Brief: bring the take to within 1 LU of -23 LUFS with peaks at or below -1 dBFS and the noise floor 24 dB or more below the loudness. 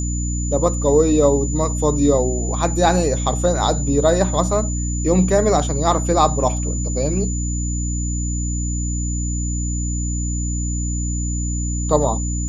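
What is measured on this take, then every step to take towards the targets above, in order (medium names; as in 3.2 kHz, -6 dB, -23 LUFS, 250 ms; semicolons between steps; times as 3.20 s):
hum 60 Hz; highest harmonic 300 Hz; hum level -20 dBFS; steady tone 7 kHz; tone level -28 dBFS; loudness -19.5 LUFS; peak level -1.5 dBFS; loudness target -23.0 LUFS
-> hum notches 60/120/180/240/300 Hz; band-stop 7 kHz, Q 30; trim -3.5 dB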